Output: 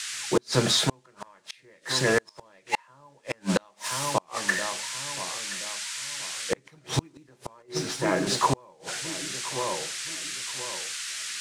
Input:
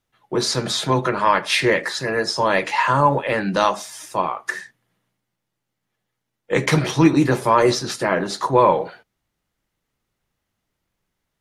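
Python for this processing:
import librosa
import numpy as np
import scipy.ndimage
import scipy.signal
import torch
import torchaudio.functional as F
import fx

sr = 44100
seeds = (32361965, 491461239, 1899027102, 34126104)

p1 = fx.law_mismatch(x, sr, coded='mu')
p2 = fx.dmg_noise_band(p1, sr, seeds[0], low_hz=1400.0, high_hz=8900.0, level_db=-35.0)
p3 = fx.comb_fb(p2, sr, f0_hz=92.0, decay_s=0.44, harmonics='all', damping=0.0, mix_pct=70, at=(7.62, 8.27))
p4 = p3 + fx.echo_feedback(p3, sr, ms=1025, feedback_pct=33, wet_db=-17.0, dry=0)
y = fx.gate_flip(p4, sr, shuts_db=-10.0, range_db=-38)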